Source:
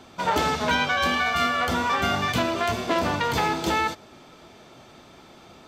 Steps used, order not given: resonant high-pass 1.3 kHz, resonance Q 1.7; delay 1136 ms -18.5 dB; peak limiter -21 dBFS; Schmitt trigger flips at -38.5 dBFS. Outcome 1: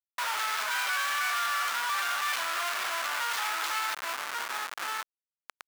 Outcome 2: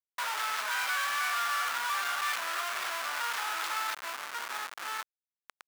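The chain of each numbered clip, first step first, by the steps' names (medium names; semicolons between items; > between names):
delay > Schmitt trigger > resonant high-pass > peak limiter; delay > peak limiter > Schmitt trigger > resonant high-pass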